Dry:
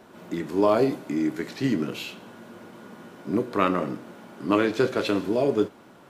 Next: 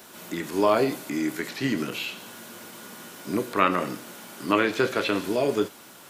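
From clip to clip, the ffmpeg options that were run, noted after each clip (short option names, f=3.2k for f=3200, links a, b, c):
-filter_complex "[0:a]acrossover=split=2800[a][b];[b]acompressor=threshold=-55dB:ratio=4:attack=1:release=60[c];[a][c]amix=inputs=2:normalize=0,crystalizer=i=9.5:c=0,volume=-3dB"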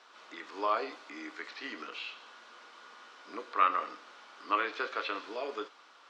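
-af "highpass=f=370:w=0.5412,highpass=f=370:w=1.3066,equalizer=f=370:t=q:w=4:g=-8,equalizer=f=600:t=q:w=4:g=-5,equalizer=f=1.2k:t=q:w=4:g=8,lowpass=f=5.1k:w=0.5412,lowpass=f=5.1k:w=1.3066,volume=-9dB"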